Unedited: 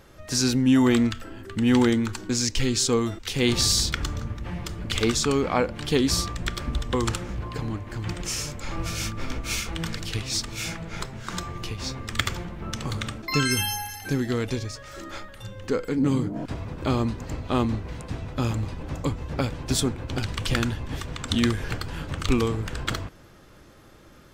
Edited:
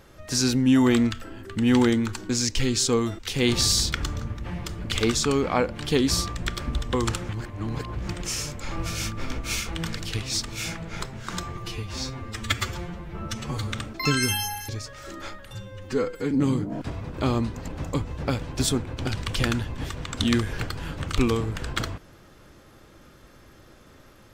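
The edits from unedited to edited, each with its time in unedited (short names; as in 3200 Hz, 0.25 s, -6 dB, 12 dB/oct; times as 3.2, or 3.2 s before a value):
7.29–8.08 reverse
11.57–13 stretch 1.5×
13.97–14.58 cut
15.44–15.95 stretch 1.5×
17.32–18.79 cut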